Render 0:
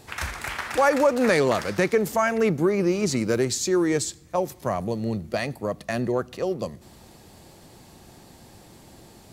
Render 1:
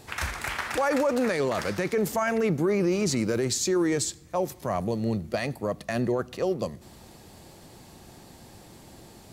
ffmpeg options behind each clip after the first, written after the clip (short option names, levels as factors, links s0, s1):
-af "alimiter=limit=0.141:level=0:latency=1:release=14"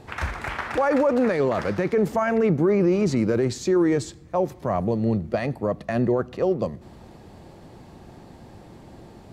-af "lowpass=f=1300:p=1,volume=1.78"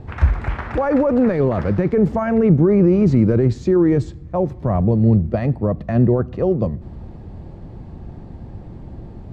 -af "aemphasis=mode=reproduction:type=riaa"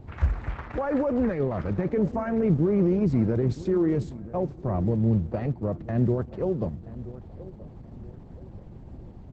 -filter_complex "[0:a]asplit=2[s0][s1];[s1]adelay=977,lowpass=f=1800:p=1,volume=0.158,asplit=2[s2][s3];[s3]adelay=977,lowpass=f=1800:p=1,volume=0.39,asplit=2[s4][s5];[s5]adelay=977,lowpass=f=1800:p=1,volume=0.39[s6];[s0][s2][s4][s6]amix=inputs=4:normalize=0,volume=0.376" -ar 48000 -c:a libopus -b:a 10k